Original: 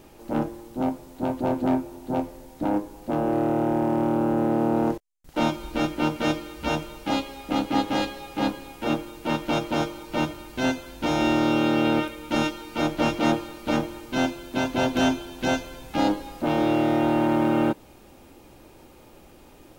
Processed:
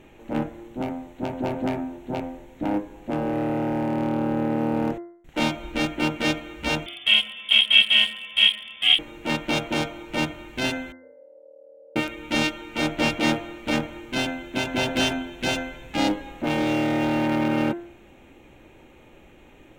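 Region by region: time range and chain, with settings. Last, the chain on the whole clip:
0:06.86–0:08.99: high-frequency loss of the air 96 metres + voice inversion scrambler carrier 3,500 Hz
0:10.92–0:11.96: downward compressor 4 to 1, threshold −30 dBFS + flat-topped band-pass 520 Hz, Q 7.8
whole clip: adaptive Wiener filter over 9 samples; high shelf with overshoot 1,600 Hz +6.5 dB, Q 1.5; hum removal 86.16 Hz, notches 24

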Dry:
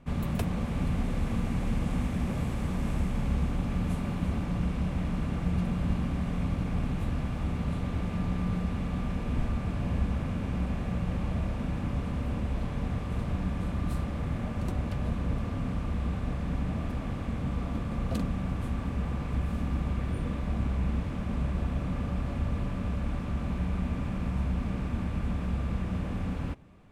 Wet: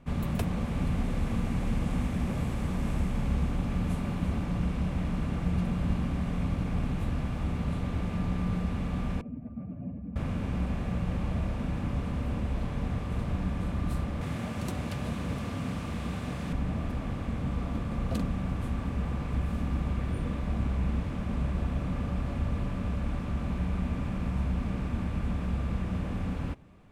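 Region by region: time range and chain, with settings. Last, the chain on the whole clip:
0:09.21–0:10.16: expanding power law on the bin magnitudes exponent 1.8 + loudspeaker in its box 190–2,800 Hz, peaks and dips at 270 Hz +5 dB, 630 Hz +6 dB, 970 Hz −6 dB, 1,700 Hz −4 dB
0:14.21–0:16.53: high-pass filter 91 Hz + high-shelf EQ 2,500 Hz +8.5 dB
whole clip: no processing

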